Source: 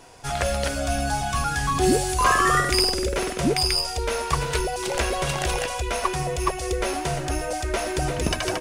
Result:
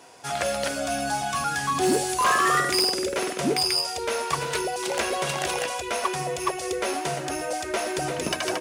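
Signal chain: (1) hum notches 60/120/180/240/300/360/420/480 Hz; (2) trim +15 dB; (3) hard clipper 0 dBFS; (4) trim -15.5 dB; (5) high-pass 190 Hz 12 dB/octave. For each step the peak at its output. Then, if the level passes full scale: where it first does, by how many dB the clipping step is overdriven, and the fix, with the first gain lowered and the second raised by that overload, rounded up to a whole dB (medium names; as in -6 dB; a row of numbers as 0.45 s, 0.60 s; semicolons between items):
-5.5 dBFS, +9.5 dBFS, 0.0 dBFS, -15.5 dBFS, -11.5 dBFS; step 2, 9.5 dB; step 2 +5 dB, step 4 -5.5 dB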